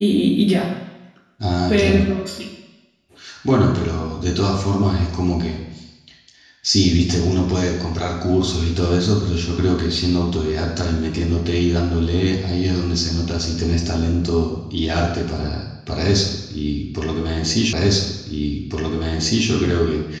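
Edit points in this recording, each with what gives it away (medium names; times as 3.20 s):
17.73 s: repeat of the last 1.76 s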